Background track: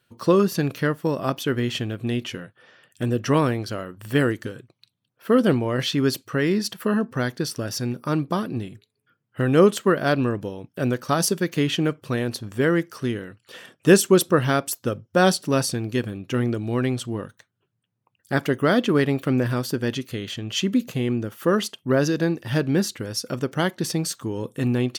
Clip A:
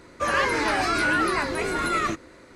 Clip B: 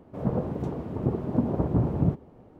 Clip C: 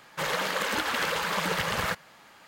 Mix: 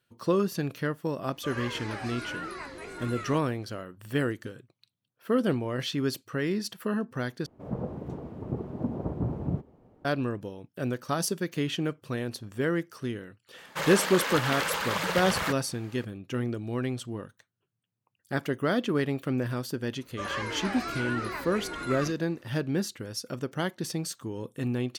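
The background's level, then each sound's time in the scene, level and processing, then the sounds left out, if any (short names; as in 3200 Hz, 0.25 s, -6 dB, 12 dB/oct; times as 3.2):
background track -7.5 dB
1.23 add A -15 dB
7.46 replace with B -6.5 dB
13.58 add C -1.5 dB
19.97 add A -11 dB + Bessel low-pass 11000 Hz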